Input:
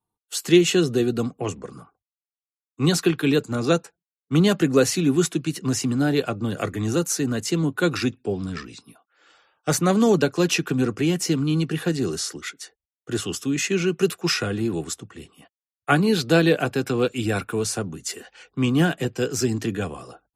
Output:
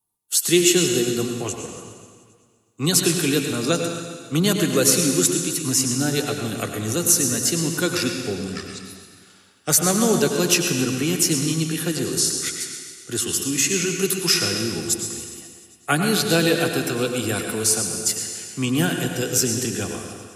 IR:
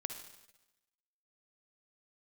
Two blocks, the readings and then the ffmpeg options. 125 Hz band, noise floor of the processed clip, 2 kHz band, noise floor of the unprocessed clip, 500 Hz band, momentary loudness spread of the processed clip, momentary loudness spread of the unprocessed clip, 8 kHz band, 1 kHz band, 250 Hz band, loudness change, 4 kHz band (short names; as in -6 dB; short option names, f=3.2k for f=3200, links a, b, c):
-1.5 dB, -54 dBFS, +1.5 dB, under -85 dBFS, -1.0 dB, 12 LU, 13 LU, +10.5 dB, -0.5 dB, -1.0 dB, +2.0 dB, +5.5 dB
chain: -filter_complex "[0:a]aemphasis=mode=production:type=75fm[a];[1:a]atrim=start_sample=2205,asetrate=24255,aresample=44100[b];[a][b]afir=irnorm=-1:irlink=0,volume=-3dB"